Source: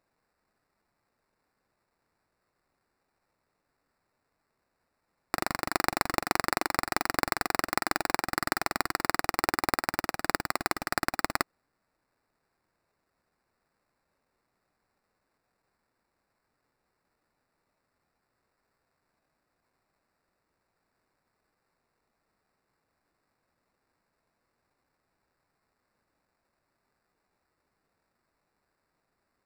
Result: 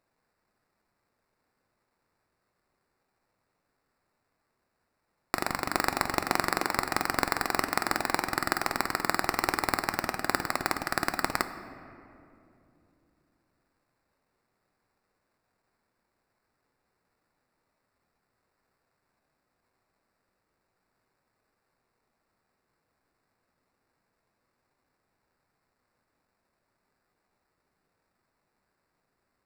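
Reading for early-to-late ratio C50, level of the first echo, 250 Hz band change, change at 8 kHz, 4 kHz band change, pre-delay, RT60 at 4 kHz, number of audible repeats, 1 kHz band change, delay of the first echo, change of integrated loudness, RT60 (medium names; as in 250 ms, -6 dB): 10.5 dB, no echo, +0.5 dB, 0.0 dB, +0.5 dB, 8 ms, 1.4 s, no echo, +0.5 dB, no echo, +0.5 dB, 2.7 s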